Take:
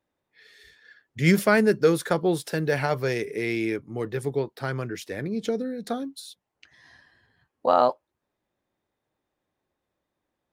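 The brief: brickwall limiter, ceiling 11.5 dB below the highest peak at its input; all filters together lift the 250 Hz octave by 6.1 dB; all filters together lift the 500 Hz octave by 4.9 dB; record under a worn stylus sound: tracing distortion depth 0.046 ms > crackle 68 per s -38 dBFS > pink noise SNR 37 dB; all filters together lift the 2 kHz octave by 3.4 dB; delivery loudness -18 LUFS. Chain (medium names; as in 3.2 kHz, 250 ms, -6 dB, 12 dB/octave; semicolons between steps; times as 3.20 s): peaking EQ 250 Hz +7.5 dB; peaking EQ 500 Hz +3.5 dB; peaking EQ 2 kHz +4 dB; peak limiter -13.5 dBFS; tracing distortion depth 0.046 ms; crackle 68 per s -38 dBFS; pink noise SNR 37 dB; trim +6.5 dB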